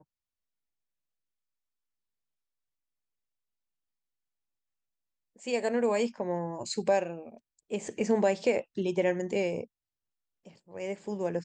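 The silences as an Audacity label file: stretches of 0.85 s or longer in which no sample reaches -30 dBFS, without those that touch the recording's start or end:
9.630000	10.770000	silence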